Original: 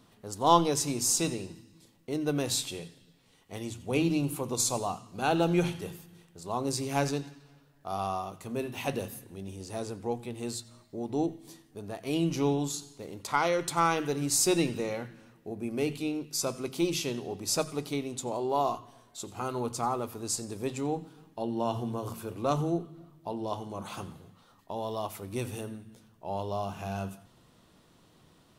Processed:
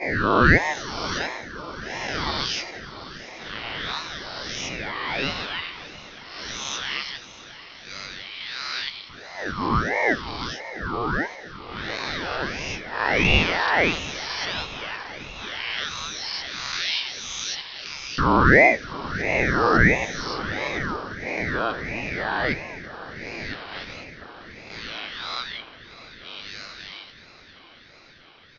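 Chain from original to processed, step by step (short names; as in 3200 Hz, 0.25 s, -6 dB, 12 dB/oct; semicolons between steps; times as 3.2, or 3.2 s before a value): spectral swells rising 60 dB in 2.29 s; low shelf 380 Hz +11 dB; gate -28 dBFS, range -10 dB; AGC gain up to 12 dB; LFO high-pass saw up 0.11 Hz 600–3700 Hz; on a send: diffused feedback echo 0.655 s, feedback 75%, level -15.5 dB; on the sum: downsampling 11025 Hz; ring modulator with a swept carrier 870 Hz, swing 60%, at 1.5 Hz; gain -2.5 dB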